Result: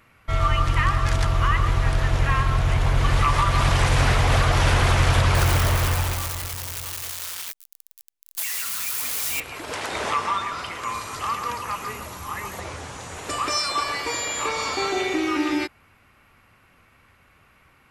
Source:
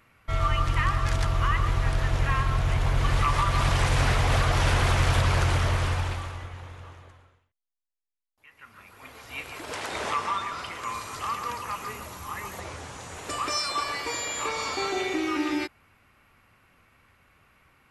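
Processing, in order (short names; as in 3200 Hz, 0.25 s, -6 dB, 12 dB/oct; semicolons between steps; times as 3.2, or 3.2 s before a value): 5.35–9.4 switching spikes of -22 dBFS; gain +4 dB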